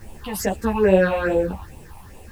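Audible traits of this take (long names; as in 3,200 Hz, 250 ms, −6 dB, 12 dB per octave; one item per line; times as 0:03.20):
phaser sweep stages 6, 2.4 Hz, lowest notch 410–1,500 Hz
a quantiser's noise floor 10 bits, dither triangular
a shimmering, thickened sound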